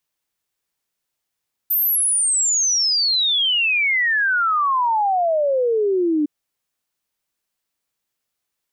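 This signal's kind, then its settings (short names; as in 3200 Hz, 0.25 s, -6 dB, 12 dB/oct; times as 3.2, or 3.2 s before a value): log sweep 14000 Hz -> 290 Hz 4.56 s -15.5 dBFS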